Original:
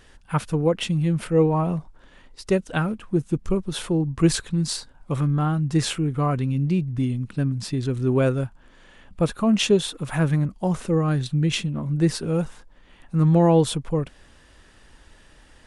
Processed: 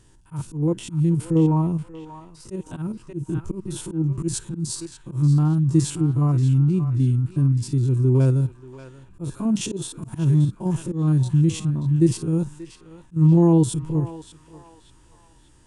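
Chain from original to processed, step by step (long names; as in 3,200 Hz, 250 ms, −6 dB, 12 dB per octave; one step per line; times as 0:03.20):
spectrum averaged block by block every 50 ms
octave-band graphic EQ 125/250/500/1,000/2,000/4,000/8,000 Hz +11/−5/−6/−6/−8/−4/+8 dB
feedback echo with a band-pass in the loop 583 ms, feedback 58%, band-pass 1,900 Hz, level −8 dB
volume swells 136 ms
hollow resonant body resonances 330/940 Hz, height 13 dB, ringing for 30 ms
level −3 dB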